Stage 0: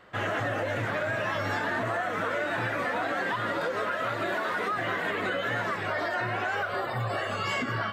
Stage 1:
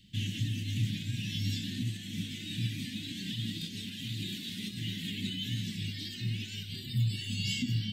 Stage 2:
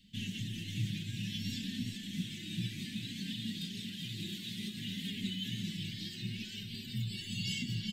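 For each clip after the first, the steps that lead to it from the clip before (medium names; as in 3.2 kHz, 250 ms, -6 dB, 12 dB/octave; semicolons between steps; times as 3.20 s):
elliptic band-stop 220–3200 Hz, stop band 50 dB; trim +5.5 dB
flange 0.6 Hz, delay 4.3 ms, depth 1.7 ms, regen +18%; delay 394 ms -8 dB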